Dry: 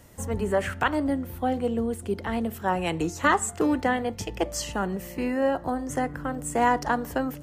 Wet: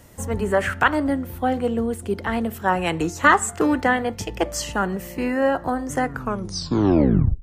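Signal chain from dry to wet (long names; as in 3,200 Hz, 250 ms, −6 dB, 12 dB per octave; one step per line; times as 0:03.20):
turntable brake at the end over 1.38 s
dynamic equaliser 1,500 Hz, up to +5 dB, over −41 dBFS, Q 1.3
level +3.5 dB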